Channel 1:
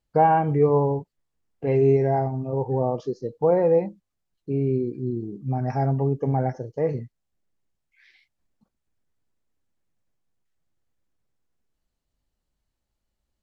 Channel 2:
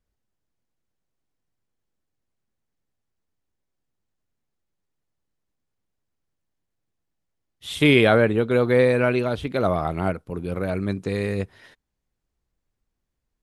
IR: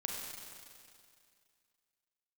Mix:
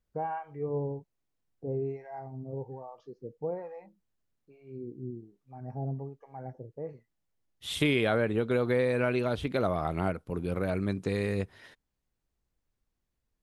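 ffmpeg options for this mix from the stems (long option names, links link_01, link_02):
-filter_complex "[0:a]aemphasis=mode=reproduction:type=75kf,acrossover=split=760[link_01][link_02];[link_01]aeval=exprs='val(0)*(1-1/2+1/2*cos(2*PI*1.2*n/s))':channel_layout=same[link_03];[link_02]aeval=exprs='val(0)*(1-1/2-1/2*cos(2*PI*1.2*n/s))':channel_layout=same[link_04];[link_03][link_04]amix=inputs=2:normalize=0,volume=-10dB[link_05];[1:a]acompressor=threshold=-22dB:ratio=3,volume=-3dB[link_06];[link_05][link_06]amix=inputs=2:normalize=0"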